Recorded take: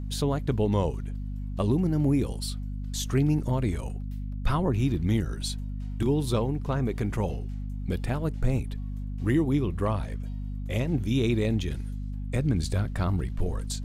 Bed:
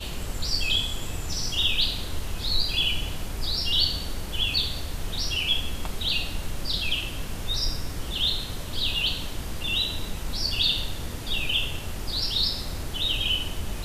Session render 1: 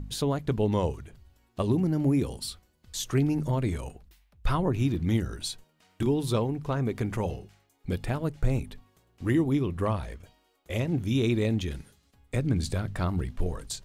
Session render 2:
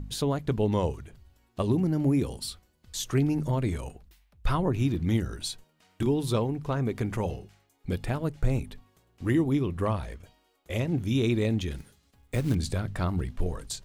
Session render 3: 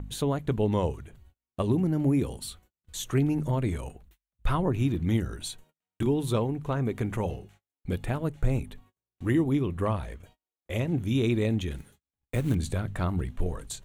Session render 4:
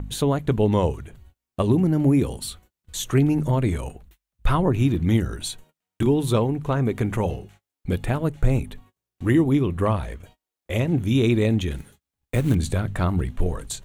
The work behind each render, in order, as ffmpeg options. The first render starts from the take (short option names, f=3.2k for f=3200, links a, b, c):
-af "bandreject=f=50:t=h:w=4,bandreject=f=100:t=h:w=4,bandreject=f=150:t=h:w=4,bandreject=f=200:t=h:w=4,bandreject=f=250:t=h:w=4"
-filter_complex "[0:a]asettb=1/sr,asplit=3[a][b][c];[a]atrim=end=11.784[d];[b]atrim=start=11.78:end=12.55,asetpts=PTS-STARTPTS,afade=t=in:d=0.004:c=qsin,afade=t=out:st=0.766:d=0.004:c=qsin,acrusher=bits=5:mode=log:mix=0:aa=0.000001[e];[c]atrim=start=12.546[f];[d][e]acrossfade=d=0.004:c1=hsin:c2=qsin[g];[g][f]acrossfade=d=0.004:c1=qsin:c2=hsin"
-af "agate=range=-32dB:threshold=-54dB:ratio=16:detection=peak,equalizer=f=5k:t=o:w=0.36:g=-11"
-af "volume=6dB"